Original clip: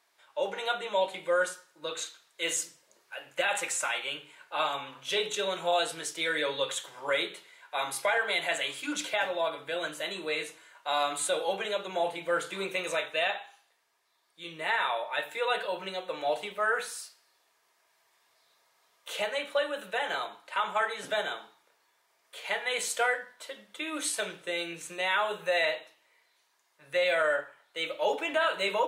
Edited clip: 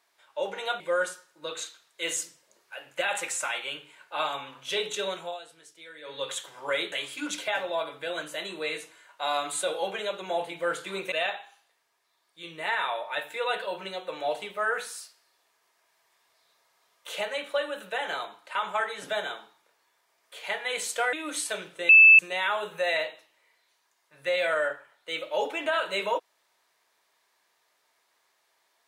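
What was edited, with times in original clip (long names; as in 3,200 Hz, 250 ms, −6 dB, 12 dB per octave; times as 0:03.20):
0:00.80–0:01.20: remove
0:05.48–0:06.73: duck −17 dB, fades 0.31 s
0:07.32–0:08.58: remove
0:12.78–0:13.13: remove
0:23.14–0:23.81: remove
0:24.57–0:24.87: beep over 2,630 Hz −10 dBFS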